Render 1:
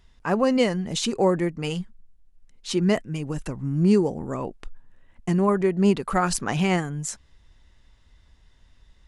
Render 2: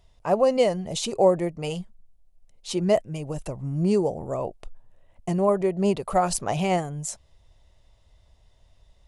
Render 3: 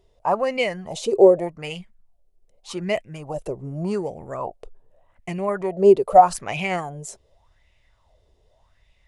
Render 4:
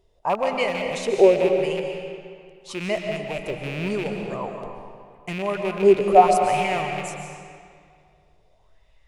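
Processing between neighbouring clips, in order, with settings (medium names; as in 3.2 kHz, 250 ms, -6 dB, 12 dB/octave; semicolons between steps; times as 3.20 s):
fifteen-band graphic EQ 100 Hz +4 dB, 250 Hz -6 dB, 630 Hz +11 dB, 1.6 kHz -8 dB, 10 kHz +4 dB; trim -2.5 dB
sweeping bell 0.84 Hz 380–2400 Hz +18 dB; trim -4.5 dB
rattle on loud lows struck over -34 dBFS, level -21 dBFS; reverberation RT60 2.1 s, pre-delay 95 ms, DRR 3 dB; trim -2 dB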